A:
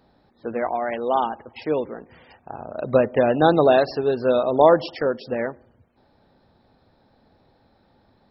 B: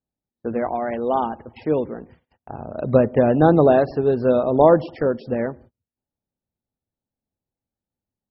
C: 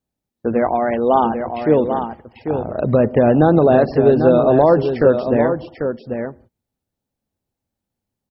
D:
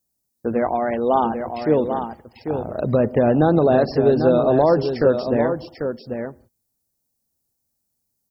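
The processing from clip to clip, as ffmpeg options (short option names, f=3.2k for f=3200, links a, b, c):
-filter_complex "[0:a]agate=range=-35dB:threshold=-46dB:ratio=16:detection=peak,lowshelf=f=360:g=11.5,acrossover=split=2300[a][b];[b]acompressor=threshold=-49dB:ratio=4[c];[a][c]amix=inputs=2:normalize=0,volume=-2.5dB"
-af "alimiter=limit=-10dB:level=0:latency=1:release=134,aecho=1:1:793:0.422,volume=6.5dB"
-af "aexciter=amount=6.1:drive=3.3:freq=4.5k,volume=-3.5dB"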